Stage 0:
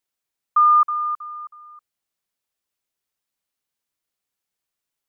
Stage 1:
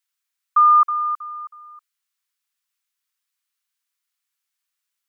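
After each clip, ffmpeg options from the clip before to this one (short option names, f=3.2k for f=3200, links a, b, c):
-af "highpass=f=1.1k:w=0.5412,highpass=f=1.1k:w=1.3066,volume=3dB"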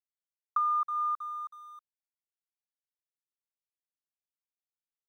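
-af "acompressor=threshold=-22dB:ratio=6,aeval=exprs='sgn(val(0))*max(abs(val(0))-0.00126,0)':c=same,volume=-5dB"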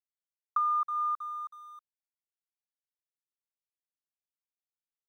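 -af anull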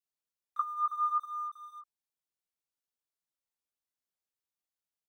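-filter_complex "[0:a]acrossover=split=2100[a][b];[a]adelay=30[c];[c][b]amix=inputs=2:normalize=0,flanger=delay=15:depth=2.8:speed=0.71,volume=4dB"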